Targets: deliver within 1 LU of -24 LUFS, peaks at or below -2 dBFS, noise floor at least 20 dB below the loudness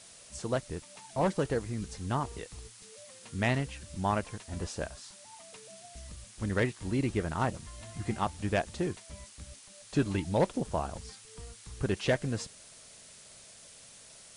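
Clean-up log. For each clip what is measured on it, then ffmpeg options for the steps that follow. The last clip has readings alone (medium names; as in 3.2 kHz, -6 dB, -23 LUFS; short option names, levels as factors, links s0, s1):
noise floor -53 dBFS; noise floor target -54 dBFS; loudness -33.5 LUFS; peak level -17.5 dBFS; loudness target -24.0 LUFS
-> -af "afftdn=nr=6:nf=-53"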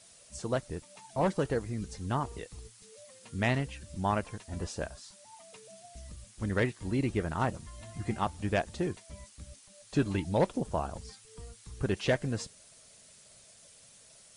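noise floor -57 dBFS; loudness -33.0 LUFS; peak level -17.5 dBFS; loudness target -24.0 LUFS
-> -af "volume=2.82"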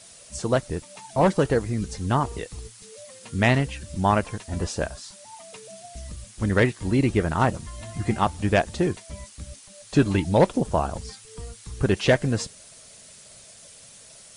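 loudness -24.0 LUFS; peak level -8.5 dBFS; noise floor -48 dBFS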